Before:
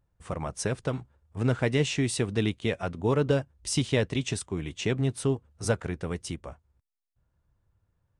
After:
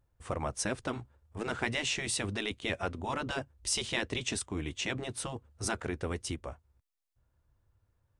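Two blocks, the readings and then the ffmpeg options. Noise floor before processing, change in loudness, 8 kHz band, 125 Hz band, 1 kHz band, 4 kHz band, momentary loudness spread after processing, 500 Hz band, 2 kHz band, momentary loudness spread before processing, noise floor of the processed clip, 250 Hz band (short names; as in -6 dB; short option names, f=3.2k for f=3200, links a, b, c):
-78 dBFS, -5.5 dB, 0.0 dB, -11.5 dB, -0.5 dB, 0.0 dB, 9 LU, -9.0 dB, 0.0 dB, 10 LU, -78 dBFS, -8.5 dB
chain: -af "equalizer=f=170:w=5.3:g=-12,afftfilt=real='re*lt(hypot(re,im),0.224)':imag='im*lt(hypot(re,im),0.224)':win_size=1024:overlap=0.75"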